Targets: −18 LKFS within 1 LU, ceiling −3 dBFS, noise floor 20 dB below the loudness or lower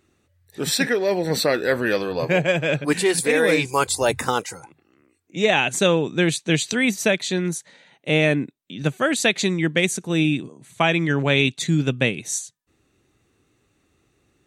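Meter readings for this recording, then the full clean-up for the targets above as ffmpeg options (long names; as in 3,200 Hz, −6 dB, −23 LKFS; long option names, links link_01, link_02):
integrated loudness −21.0 LKFS; sample peak −4.0 dBFS; target loudness −18.0 LKFS
→ -af "volume=3dB,alimiter=limit=-3dB:level=0:latency=1"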